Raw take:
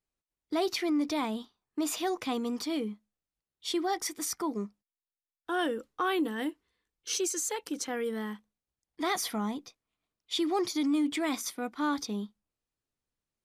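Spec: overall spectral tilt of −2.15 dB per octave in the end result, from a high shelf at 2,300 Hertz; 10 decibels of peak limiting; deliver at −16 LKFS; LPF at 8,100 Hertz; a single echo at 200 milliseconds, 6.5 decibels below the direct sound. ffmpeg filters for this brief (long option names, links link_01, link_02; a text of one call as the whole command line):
ffmpeg -i in.wav -af "lowpass=8100,highshelf=frequency=2300:gain=8.5,alimiter=limit=-22.5dB:level=0:latency=1,aecho=1:1:200:0.473,volume=15.5dB" out.wav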